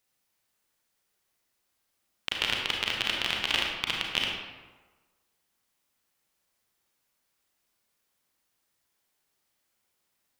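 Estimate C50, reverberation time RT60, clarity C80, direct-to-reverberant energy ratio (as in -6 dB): 1.0 dB, 1.3 s, 3.5 dB, -1.0 dB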